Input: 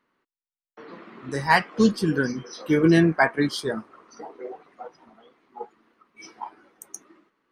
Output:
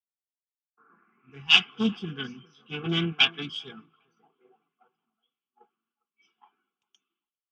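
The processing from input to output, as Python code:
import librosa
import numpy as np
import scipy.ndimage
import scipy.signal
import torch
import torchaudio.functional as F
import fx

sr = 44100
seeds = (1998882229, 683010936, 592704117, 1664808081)

p1 = fx.self_delay(x, sr, depth_ms=0.41)
p2 = fx.highpass(p1, sr, hz=160.0, slope=6)
p3 = fx.peak_eq(p2, sr, hz=960.0, db=-11.5, octaves=0.2)
p4 = fx.fixed_phaser(p3, sr, hz=2800.0, stages=8)
p5 = fx.notch_comb(p4, sr, f0_hz=310.0)
p6 = p5 + fx.echo_wet_lowpass(p5, sr, ms=402, feedback_pct=41, hz=1800.0, wet_db=-21, dry=0)
p7 = fx.filter_sweep_lowpass(p6, sr, from_hz=720.0, to_hz=3300.0, start_s=0.32, end_s=1.52, q=4.7)
p8 = fx.band_widen(p7, sr, depth_pct=70)
y = p8 * 10.0 ** (-6.5 / 20.0)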